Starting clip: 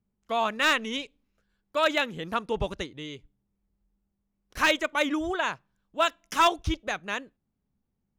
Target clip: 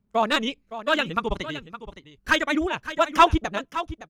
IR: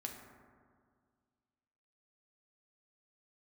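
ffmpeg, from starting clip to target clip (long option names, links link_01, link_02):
-af "atempo=2,highshelf=frequency=7700:gain=9.5,aphaser=in_gain=1:out_gain=1:delay=1.1:decay=0.39:speed=0.31:type=triangular,aemphasis=mode=reproduction:type=50kf,aecho=1:1:565:0.224,volume=4dB"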